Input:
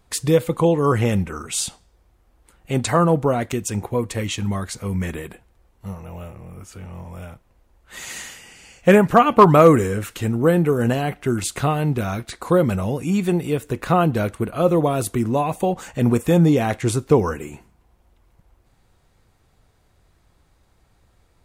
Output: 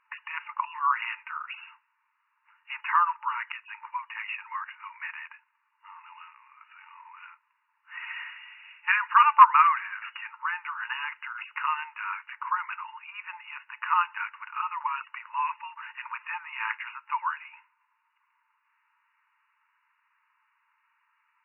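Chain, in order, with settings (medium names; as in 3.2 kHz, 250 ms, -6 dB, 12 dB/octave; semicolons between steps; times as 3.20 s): 12.76–13.56 s: distance through air 220 m; FFT band-pass 870–2900 Hz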